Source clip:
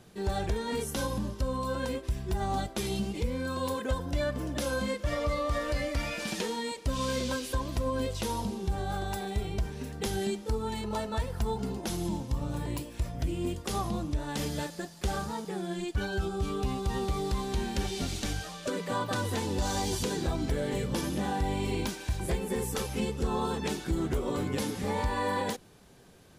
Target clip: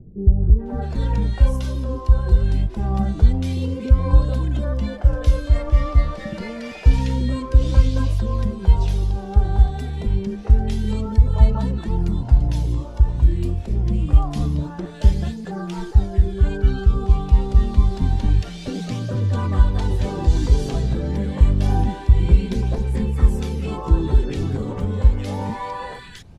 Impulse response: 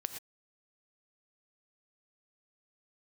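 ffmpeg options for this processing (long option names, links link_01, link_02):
-filter_complex "[0:a]aphaser=in_gain=1:out_gain=1:delay=2.7:decay=0.31:speed=0.27:type=triangular,aemphasis=mode=reproduction:type=bsi,acrossover=split=460|1600[link_01][link_02][link_03];[link_02]adelay=430[link_04];[link_03]adelay=660[link_05];[link_01][link_04][link_05]amix=inputs=3:normalize=0,volume=3dB"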